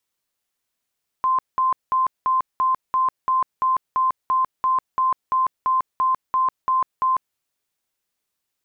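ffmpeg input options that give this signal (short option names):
-f lavfi -i "aevalsrc='0.158*sin(2*PI*1040*mod(t,0.34))*lt(mod(t,0.34),153/1040)':d=6.12:s=44100"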